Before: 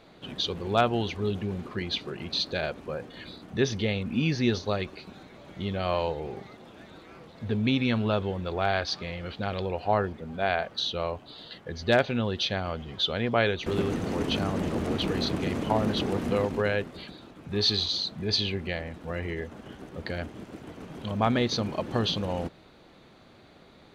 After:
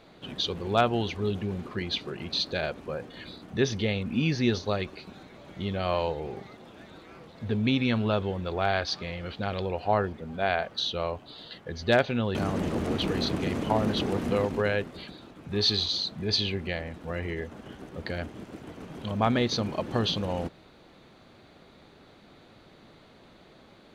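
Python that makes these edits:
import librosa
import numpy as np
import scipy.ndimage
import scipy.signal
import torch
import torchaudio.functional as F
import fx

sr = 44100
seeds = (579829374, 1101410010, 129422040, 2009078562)

y = fx.edit(x, sr, fx.cut(start_s=12.35, length_s=2.0), tone=tone)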